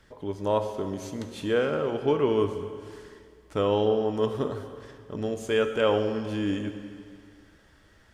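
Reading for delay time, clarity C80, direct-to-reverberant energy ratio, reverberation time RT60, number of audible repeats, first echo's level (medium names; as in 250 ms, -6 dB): no echo, 9.5 dB, 7.5 dB, 2.2 s, no echo, no echo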